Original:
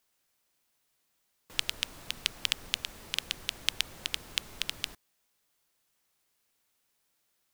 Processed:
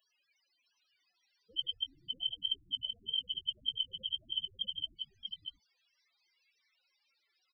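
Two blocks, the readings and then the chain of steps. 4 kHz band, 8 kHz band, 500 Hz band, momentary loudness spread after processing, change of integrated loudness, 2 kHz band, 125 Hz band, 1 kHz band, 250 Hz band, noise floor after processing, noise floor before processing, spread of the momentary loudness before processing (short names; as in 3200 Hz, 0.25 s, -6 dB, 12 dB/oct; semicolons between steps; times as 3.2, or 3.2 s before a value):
0.0 dB, under -40 dB, under -10 dB, 8 LU, -3.0 dB, under -35 dB, n/a, under -30 dB, under -10 dB, -80 dBFS, -76 dBFS, 5 LU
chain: steep low-pass 6300 Hz 36 dB/oct; loudest bins only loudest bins 4; bell 2200 Hz +7 dB 0.59 oct; in parallel at +2 dB: negative-ratio compressor -52 dBFS, ratio -1; on the sum: tilt +4.5 dB/oct; on a send: echo 0.639 s -5.5 dB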